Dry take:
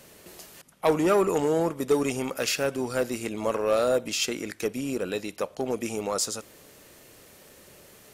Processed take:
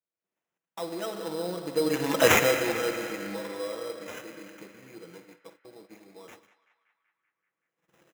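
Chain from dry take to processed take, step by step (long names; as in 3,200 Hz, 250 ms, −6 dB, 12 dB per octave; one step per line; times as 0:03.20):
camcorder AGC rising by 16 dB per second
source passing by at 0:02.27, 25 m/s, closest 2.4 metres
comb filter 6.1 ms, depth 88%
spring reverb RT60 2.7 s, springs 40/45 ms, chirp 25 ms, DRR 5 dB
sample-rate reduction 4,500 Hz, jitter 0%
high-pass filter 130 Hz 12 dB per octave
noise gate −57 dBFS, range −32 dB
feedback echo with a band-pass in the loop 191 ms, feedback 74%, band-pass 1,700 Hz, level −13 dB
level +6.5 dB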